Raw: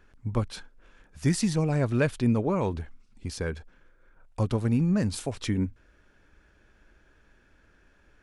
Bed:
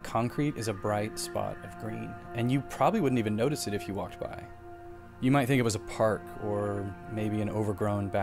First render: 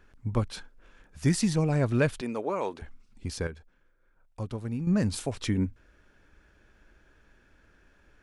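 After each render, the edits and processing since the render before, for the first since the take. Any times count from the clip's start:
0:02.21–0:02.82: high-pass filter 420 Hz
0:03.47–0:04.87: clip gain −8.5 dB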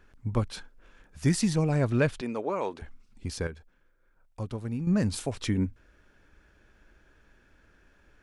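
0:01.90–0:02.77: Bessel low-pass filter 7,900 Hz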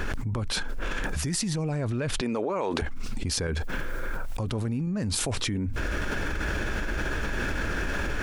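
brickwall limiter −24.5 dBFS, peak gain reduction 11.5 dB
envelope flattener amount 100%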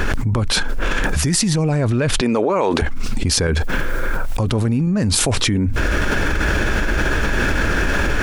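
level +11 dB
brickwall limiter −1 dBFS, peak gain reduction 2.5 dB

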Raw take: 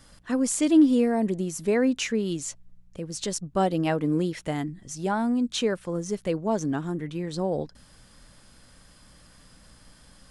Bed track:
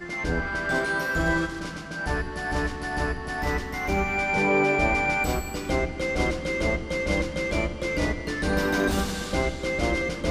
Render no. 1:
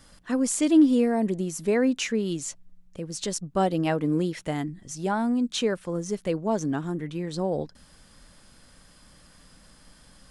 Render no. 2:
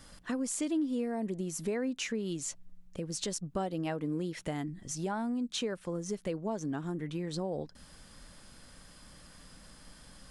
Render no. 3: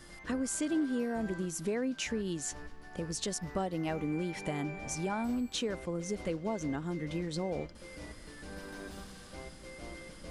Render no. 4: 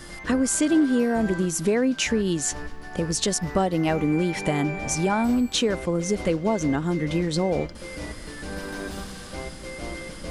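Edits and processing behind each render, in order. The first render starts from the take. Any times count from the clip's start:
hum removal 60 Hz, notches 2
downward compressor 3 to 1, threshold −34 dBFS, peak gain reduction 15 dB
mix in bed track −21.5 dB
level +11.5 dB

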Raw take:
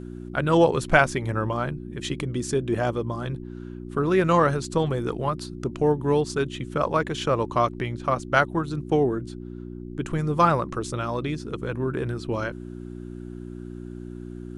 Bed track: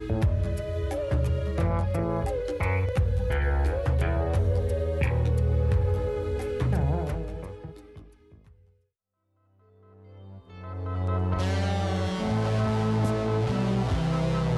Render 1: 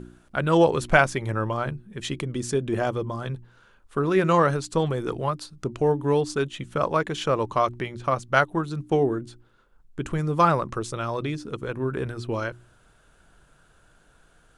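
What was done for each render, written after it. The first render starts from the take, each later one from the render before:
hum removal 60 Hz, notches 6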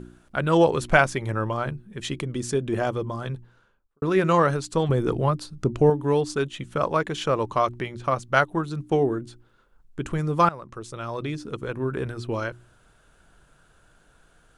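0:03.34–0:04.02: fade out and dull
0:04.89–0:05.90: low-shelf EQ 470 Hz +7.5 dB
0:10.49–0:11.42: fade in, from −18.5 dB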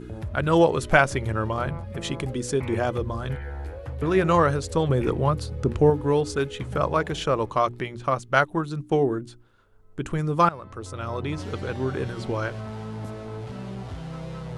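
mix in bed track −9.5 dB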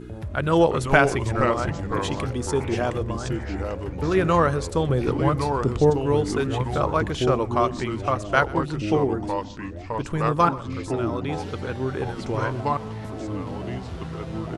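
single-tap delay 125 ms −22 dB
delay with pitch and tempo change per echo 297 ms, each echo −3 semitones, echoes 3, each echo −6 dB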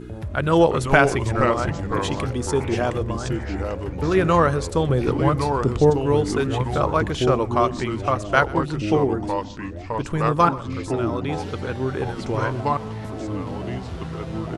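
level +2 dB
brickwall limiter −2 dBFS, peak gain reduction 1.5 dB

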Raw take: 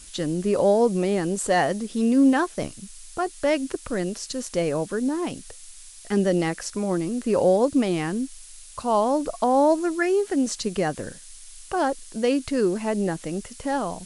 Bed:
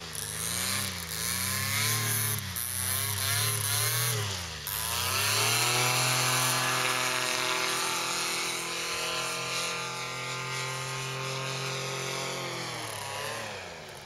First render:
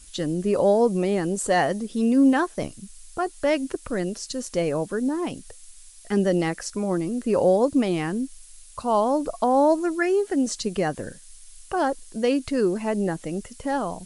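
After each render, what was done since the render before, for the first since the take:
broadband denoise 6 dB, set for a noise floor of −45 dBFS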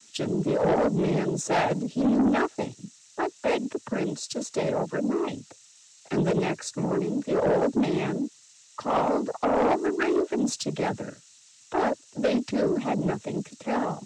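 cochlear-implant simulation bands 12
soft clipping −17 dBFS, distortion −13 dB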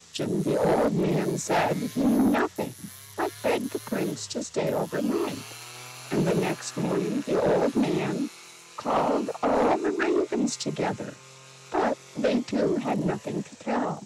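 mix in bed −16 dB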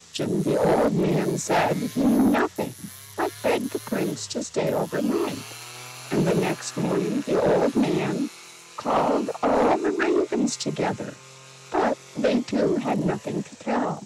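level +2.5 dB

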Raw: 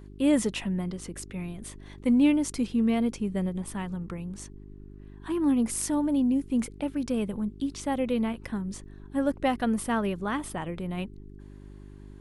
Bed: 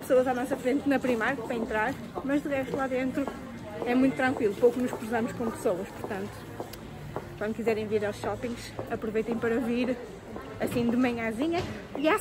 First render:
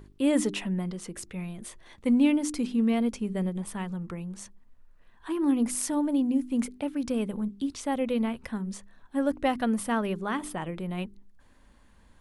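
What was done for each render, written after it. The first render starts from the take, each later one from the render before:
hum removal 50 Hz, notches 8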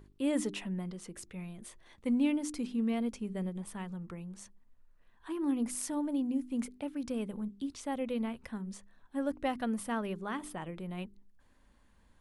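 level −7 dB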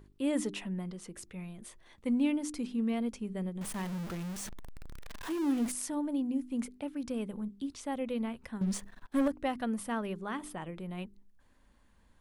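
0:03.61–0:05.72: converter with a step at zero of −37 dBFS
0:08.61–0:09.28: leveller curve on the samples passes 3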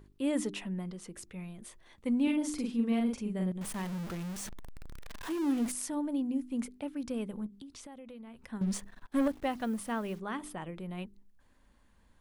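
0:02.23–0:03.52: double-tracking delay 43 ms −2.5 dB
0:07.46–0:08.51: downward compressor 12 to 1, threshold −44 dBFS
0:09.20–0:10.20: hold until the input has moved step −53 dBFS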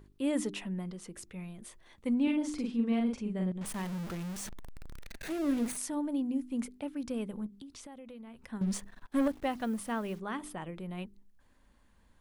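0:02.14–0:03.66: high-frequency loss of the air 55 metres
0:05.04–0:05.77: lower of the sound and its delayed copy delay 0.47 ms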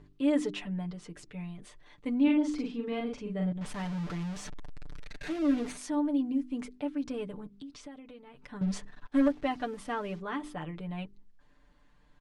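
low-pass filter 5,500 Hz 12 dB per octave
comb filter 6.8 ms, depth 76%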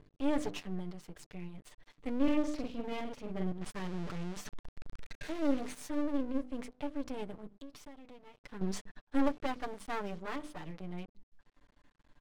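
half-wave rectification

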